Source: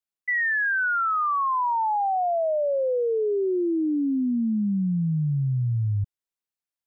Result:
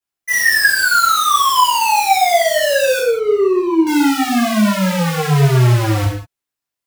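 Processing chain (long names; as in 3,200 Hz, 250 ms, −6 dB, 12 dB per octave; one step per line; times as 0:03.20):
each half-wave held at its own peak
0:02.99–0:03.87: moving average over 26 samples
reverb whose tail is shaped and stops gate 230 ms falling, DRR −7.5 dB
level −1 dB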